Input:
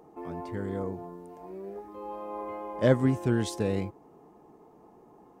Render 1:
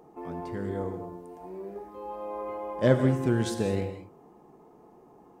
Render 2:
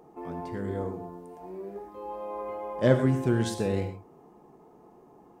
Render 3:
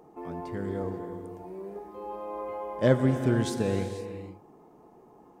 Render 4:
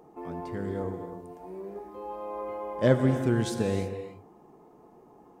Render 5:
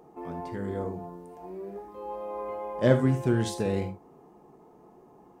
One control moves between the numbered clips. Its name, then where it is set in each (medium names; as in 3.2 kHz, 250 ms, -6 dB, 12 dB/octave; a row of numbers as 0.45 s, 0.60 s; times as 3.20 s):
gated-style reverb, gate: 230 ms, 150 ms, 530 ms, 360 ms, 100 ms